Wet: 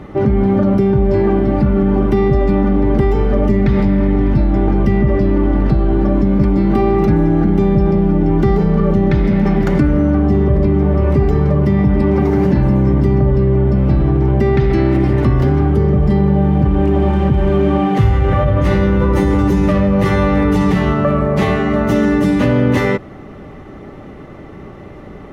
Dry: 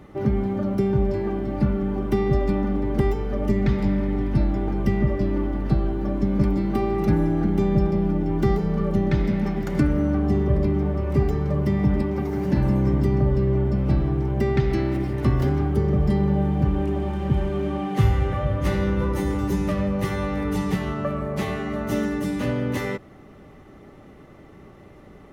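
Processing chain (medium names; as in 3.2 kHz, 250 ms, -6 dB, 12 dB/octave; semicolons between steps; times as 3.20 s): low-pass 3.2 kHz 6 dB/octave; in parallel at +1 dB: compressor with a negative ratio -25 dBFS, ratio -1; on the sum: trim +4.5 dB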